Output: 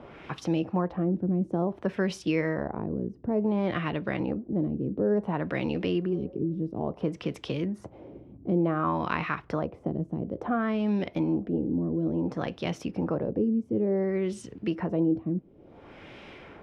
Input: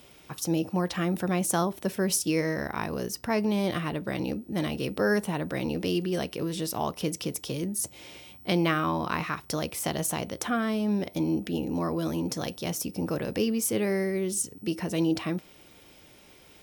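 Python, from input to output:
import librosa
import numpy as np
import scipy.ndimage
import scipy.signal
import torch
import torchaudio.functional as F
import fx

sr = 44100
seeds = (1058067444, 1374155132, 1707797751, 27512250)

y = fx.spec_repair(x, sr, seeds[0], start_s=6.15, length_s=0.39, low_hz=470.0, high_hz=2200.0, source='before')
y = fx.filter_lfo_lowpass(y, sr, shape='sine', hz=0.57, low_hz=290.0, high_hz=3000.0, q=1.2)
y = fx.band_squash(y, sr, depth_pct=40)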